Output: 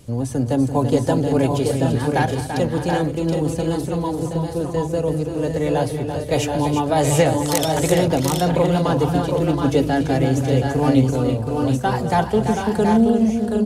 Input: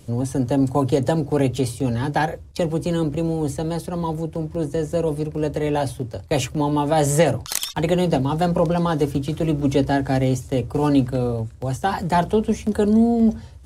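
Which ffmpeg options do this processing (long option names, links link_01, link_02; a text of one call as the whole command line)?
ffmpeg -i in.wav -af "aecho=1:1:214|338|617|726|764:0.168|0.398|0.133|0.531|0.422" out.wav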